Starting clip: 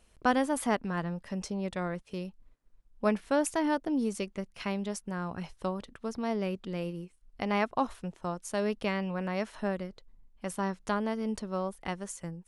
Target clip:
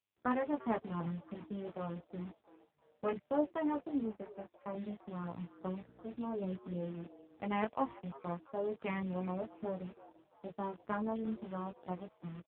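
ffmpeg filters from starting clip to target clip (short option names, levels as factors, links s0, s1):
-filter_complex "[0:a]afwtdn=0.0158,bandreject=f=1500:w=30,acrusher=bits=8:dc=4:mix=0:aa=0.000001,asettb=1/sr,asplit=3[s0][s1][s2];[s0]atrim=end=4.034[s3];[s1]atrim=start=4.03:end=4.75,asetpts=PTS-STARTPTS,afade=t=in:d=0.004:c=qsin,afade=t=out:st=0.716:d=0.004:c=qsin,highpass=170,equalizer=f=240:t=q:w=4:g=-4,equalizer=f=370:t=q:w=4:g=-9,equalizer=f=690:t=q:w=4:g=6,equalizer=f=1600:t=q:w=4:g=3,lowpass=f=2400:w=0.5412,lowpass=f=2400:w=1.3066[s4];[s2]atrim=start=4.746[s5];[s3][s4]acrossfade=d=0.004:c1=hsin:c2=qsin[s6];[s6][s5]acrossfade=d=0.004:c1=qsin:c2=hsin,flanger=delay=16.5:depth=2.1:speed=0.33,asplit=4[s7][s8][s9][s10];[s8]adelay=340,afreqshift=140,volume=0.112[s11];[s9]adelay=680,afreqshift=280,volume=0.0462[s12];[s10]adelay=1020,afreqshift=420,volume=0.0188[s13];[s7][s11][s12][s13]amix=inputs=4:normalize=0,asettb=1/sr,asplit=3[s14][s15][s16];[s14]atrim=end=5.594[s17];[s15]atrim=start=5.59:end=6.18,asetpts=PTS-STARTPTS,afade=t=in:d=0.004:c=qsin,afade=t=out:st=0.586:d=0.004:c=qsin,aeval=exprs='val(0)+0.00178*(sin(2*PI*60*n/s)+sin(2*PI*2*60*n/s)/2+sin(2*PI*3*60*n/s)/3+sin(2*PI*4*60*n/s)/4+sin(2*PI*5*60*n/s)/5)':c=same[s18];[s16]atrim=start=6.176[s19];[s17][s18]acrossfade=d=0.004:c1=hsin:c2=qsin[s20];[s20][s19]acrossfade=d=0.004:c1=qsin:c2=hsin,volume=0.75" -ar 8000 -c:a libopencore_amrnb -b:a 5900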